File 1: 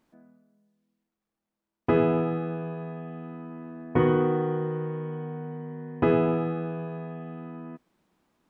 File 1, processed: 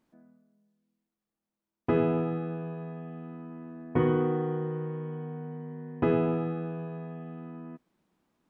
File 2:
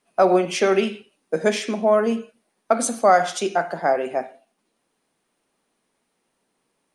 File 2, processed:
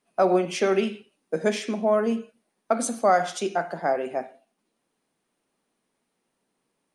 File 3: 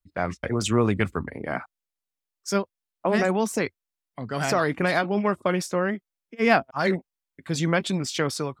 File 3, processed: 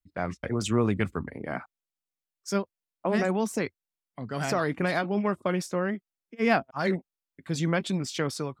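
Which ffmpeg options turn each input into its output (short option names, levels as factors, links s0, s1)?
-af "equalizer=f=190:t=o:w=2.1:g=3,volume=0.562"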